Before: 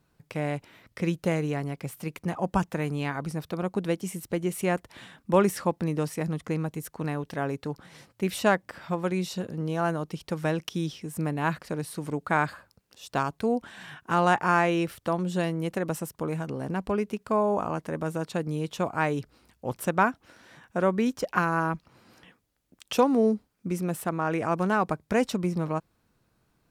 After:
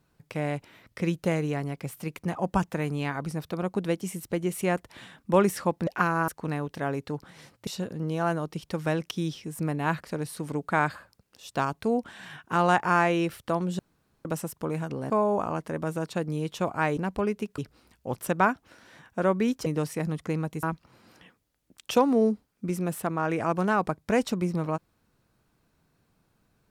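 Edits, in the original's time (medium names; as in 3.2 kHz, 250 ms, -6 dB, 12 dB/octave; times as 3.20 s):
5.87–6.84 s: swap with 21.24–21.65 s
8.23–9.25 s: delete
15.37–15.83 s: room tone
16.68–17.29 s: move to 19.16 s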